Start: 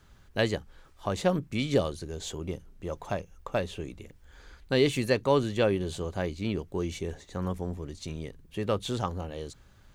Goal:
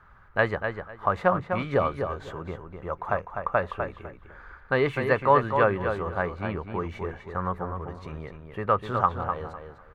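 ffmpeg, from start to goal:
-filter_complex "[0:a]firequalizer=gain_entry='entry(120,0);entry(290,-5);entry(450,1);entry(1200,14);entry(3100,-9);entry(6900,-21);entry(12000,-15)':delay=0.05:min_phase=1,asplit=2[s0][s1];[s1]adelay=251,lowpass=f=3700:p=1,volume=0.473,asplit=2[s2][s3];[s3]adelay=251,lowpass=f=3700:p=1,volume=0.21,asplit=2[s4][s5];[s5]adelay=251,lowpass=f=3700:p=1,volume=0.21[s6];[s0][s2][s4][s6]amix=inputs=4:normalize=0"

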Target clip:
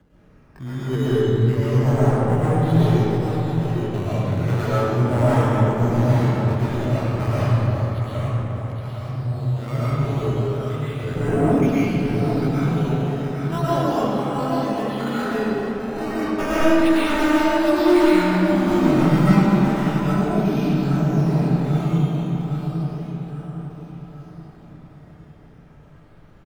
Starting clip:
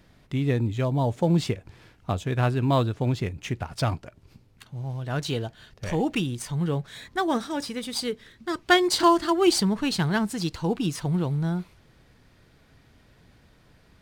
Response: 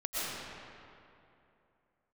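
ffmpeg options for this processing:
-filter_complex "[0:a]aphaser=in_gain=1:out_gain=1:delay=2.3:decay=0.43:speed=1:type=triangular,afreqshift=19,atempo=0.53,lowshelf=f=230:g=-2.5,aresample=11025,aeval=exprs='0.15*(abs(mod(val(0)/0.15+3,4)-2)-1)':c=same,aresample=44100,aecho=1:1:814|1628|2442|3256|4070|4884:0.531|0.255|0.122|0.0587|0.0282|0.0135,asetrate=38170,aresample=44100,atempo=1.15535,acrusher=samples=9:mix=1:aa=0.000001:lfo=1:lforange=9:lforate=0.33,highshelf=f=2700:g=-11[s0];[1:a]atrim=start_sample=2205[s1];[s0][s1]afir=irnorm=-1:irlink=0"

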